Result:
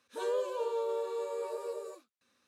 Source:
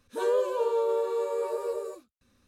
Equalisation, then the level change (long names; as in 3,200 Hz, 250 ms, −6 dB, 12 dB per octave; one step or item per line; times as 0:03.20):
meter weighting curve A
dynamic equaliser 1,400 Hz, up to −5 dB, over −45 dBFS, Q 0.8
−2.5 dB